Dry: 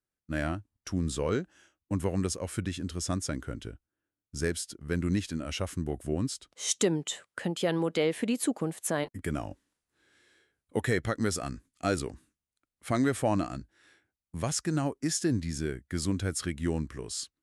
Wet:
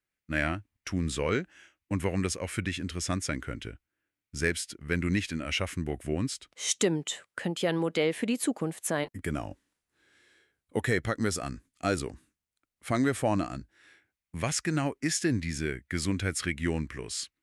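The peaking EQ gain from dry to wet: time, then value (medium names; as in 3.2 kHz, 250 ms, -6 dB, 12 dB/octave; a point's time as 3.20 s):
peaking EQ 2.2 kHz 0.95 oct
6.13 s +11.5 dB
6.89 s +3 dB
13.56 s +3 dB
14.39 s +11 dB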